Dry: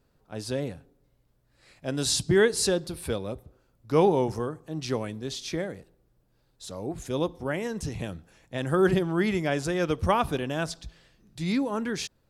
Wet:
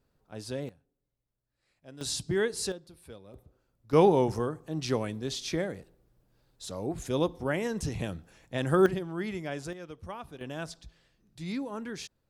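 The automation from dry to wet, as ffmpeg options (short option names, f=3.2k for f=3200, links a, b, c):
-af "asetnsamples=n=441:p=0,asendcmd='0.69 volume volume -18dB;2.01 volume volume -7.5dB;2.72 volume volume -17.5dB;3.34 volume volume -7.5dB;3.93 volume volume 0dB;8.86 volume volume -9dB;9.73 volume volume -17.5dB;10.41 volume volume -8dB',volume=-5.5dB"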